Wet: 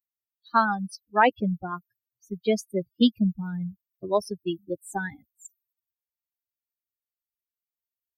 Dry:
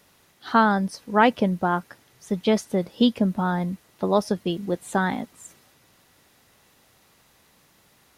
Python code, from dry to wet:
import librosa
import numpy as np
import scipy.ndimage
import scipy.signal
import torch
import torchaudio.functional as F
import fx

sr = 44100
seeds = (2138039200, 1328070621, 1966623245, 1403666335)

y = fx.bin_expand(x, sr, power=3.0)
y = F.gain(torch.from_numpy(y), 2.0).numpy()